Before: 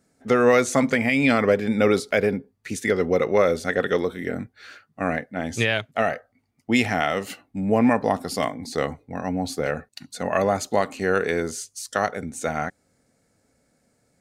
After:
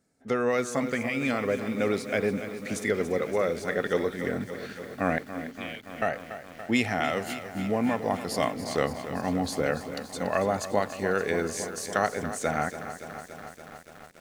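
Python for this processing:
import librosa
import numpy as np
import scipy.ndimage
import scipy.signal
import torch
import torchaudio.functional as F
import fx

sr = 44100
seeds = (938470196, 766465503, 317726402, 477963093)

y = fx.rider(x, sr, range_db=4, speed_s=0.5)
y = fx.vowel_filter(y, sr, vowel='i', at=(5.18, 6.02))
y = fx.echo_crushed(y, sr, ms=285, feedback_pct=80, bits=7, wet_db=-11.5)
y = y * librosa.db_to_amplitude(-5.5)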